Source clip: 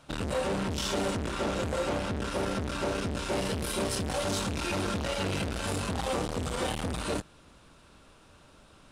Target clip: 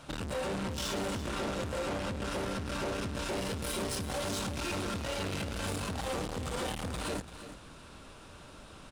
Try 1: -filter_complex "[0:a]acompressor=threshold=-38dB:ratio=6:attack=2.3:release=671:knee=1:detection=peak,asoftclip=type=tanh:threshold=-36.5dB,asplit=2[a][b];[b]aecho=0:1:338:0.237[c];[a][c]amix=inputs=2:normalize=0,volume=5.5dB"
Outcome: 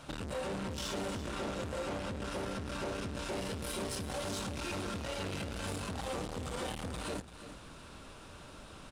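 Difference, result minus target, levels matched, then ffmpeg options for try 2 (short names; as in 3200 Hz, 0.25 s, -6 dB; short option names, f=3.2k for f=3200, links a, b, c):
compressor: peak gain reduction +6 dB
-filter_complex "[0:a]acompressor=threshold=-31dB:ratio=6:attack=2.3:release=671:knee=1:detection=peak,asoftclip=type=tanh:threshold=-36.5dB,asplit=2[a][b];[b]aecho=0:1:338:0.237[c];[a][c]amix=inputs=2:normalize=0,volume=5.5dB"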